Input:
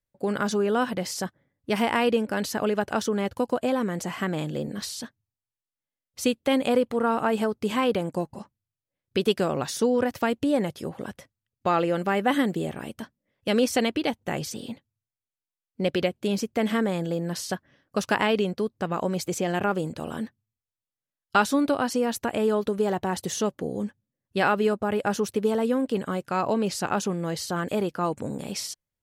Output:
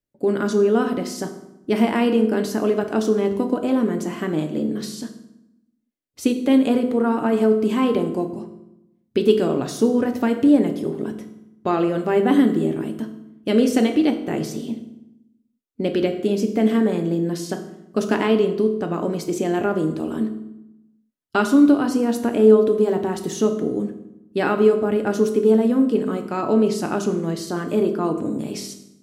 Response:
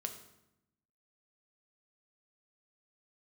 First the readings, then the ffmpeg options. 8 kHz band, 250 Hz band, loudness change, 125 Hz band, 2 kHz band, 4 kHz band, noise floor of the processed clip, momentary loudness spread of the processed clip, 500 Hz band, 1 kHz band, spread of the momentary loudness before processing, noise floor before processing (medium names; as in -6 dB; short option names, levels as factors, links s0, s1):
-1.0 dB, +8.5 dB, +6.0 dB, +4.0 dB, -1.0 dB, -1.0 dB, -66 dBFS, 13 LU, +6.5 dB, 0.0 dB, 11 LU, under -85 dBFS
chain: -filter_complex "[0:a]equalizer=f=300:t=o:w=0.87:g=13.5[s0];[1:a]atrim=start_sample=2205[s1];[s0][s1]afir=irnorm=-1:irlink=0"